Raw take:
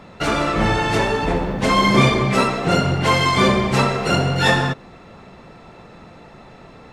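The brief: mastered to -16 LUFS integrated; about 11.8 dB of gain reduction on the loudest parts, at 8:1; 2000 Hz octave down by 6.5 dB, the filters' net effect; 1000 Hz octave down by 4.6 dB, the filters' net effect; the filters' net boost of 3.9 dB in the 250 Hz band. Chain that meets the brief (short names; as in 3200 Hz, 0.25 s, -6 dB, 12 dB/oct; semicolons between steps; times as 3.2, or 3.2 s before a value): bell 250 Hz +5.5 dB; bell 1000 Hz -4 dB; bell 2000 Hz -7 dB; compressor 8:1, threshold -20 dBFS; gain +8.5 dB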